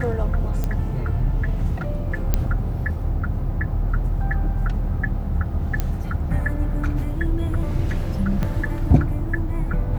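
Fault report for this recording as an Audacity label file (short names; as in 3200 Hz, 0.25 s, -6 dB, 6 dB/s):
0.640000	0.640000	pop -12 dBFS
2.340000	2.340000	pop -6 dBFS
5.800000	5.800000	pop -9 dBFS
8.430000	8.430000	pop -13 dBFS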